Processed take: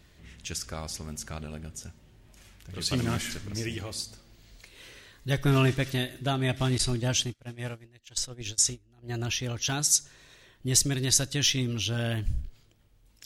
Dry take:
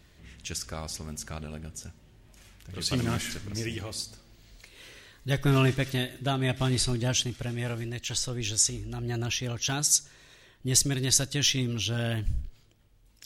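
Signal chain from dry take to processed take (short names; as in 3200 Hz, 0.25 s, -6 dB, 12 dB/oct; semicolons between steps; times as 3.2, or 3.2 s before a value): 6.78–9.22 gate -30 dBFS, range -25 dB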